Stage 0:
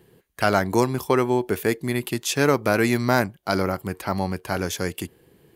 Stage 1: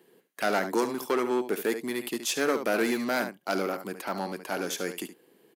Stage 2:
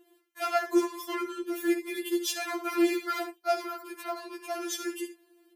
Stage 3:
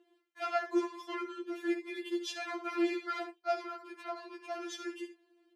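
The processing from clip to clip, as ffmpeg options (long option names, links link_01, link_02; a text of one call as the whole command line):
ffmpeg -i in.wav -af "aecho=1:1:72:0.251,aeval=exprs='clip(val(0),-1,0.106)':channel_layout=same,highpass=frequency=220:width=0.5412,highpass=frequency=220:width=1.3066,volume=-3.5dB" out.wav
ffmpeg -i in.wav -filter_complex "[0:a]acrossover=split=160[link_01][link_02];[link_01]acompressor=threshold=-59dB:ratio=5[link_03];[link_03][link_02]amix=inputs=2:normalize=0,afftfilt=real='re*4*eq(mod(b,16),0)':imag='im*4*eq(mod(b,16),0)':win_size=2048:overlap=0.75" out.wav
ffmpeg -i in.wav -af "highpass=260,lowpass=4500,volume=-5dB" out.wav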